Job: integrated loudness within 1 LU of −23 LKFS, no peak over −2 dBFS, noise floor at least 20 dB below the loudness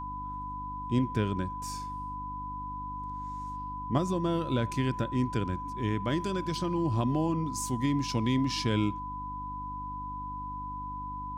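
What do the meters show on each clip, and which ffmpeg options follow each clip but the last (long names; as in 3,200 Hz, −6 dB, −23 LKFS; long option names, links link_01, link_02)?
mains hum 50 Hz; hum harmonics up to 300 Hz; level of the hum −40 dBFS; interfering tone 1,000 Hz; level of the tone −36 dBFS; integrated loudness −32.0 LKFS; sample peak −14.5 dBFS; target loudness −23.0 LKFS
→ -af "bandreject=frequency=50:width_type=h:width=4,bandreject=frequency=100:width_type=h:width=4,bandreject=frequency=150:width_type=h:width=4,bandreject=frequency=200:width_type=h:width=4,bandreject=frequency=250:width_type=h:width=4,bandreject=frequency=300:width_type=h:width=4"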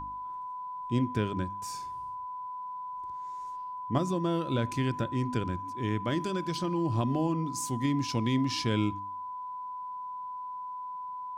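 mains hum none found; interfering tone 1,000 Hz; level of the tone −36 dBFS
→ -af "bandreject=frequency=1000:width=30"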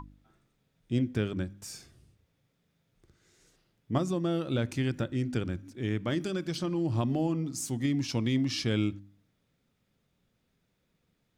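interfering tone none found; integrated loudness −31.0 LKFS; sample peak −16.0 dBFS; target loudness −23.0 LKFS
→ -af "volume=8dB"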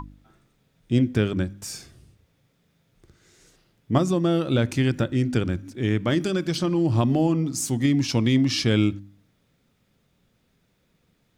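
integrated loudness −23.0 LKFS; sample peak −8.0 dBFS; background noise floor −68 dBFS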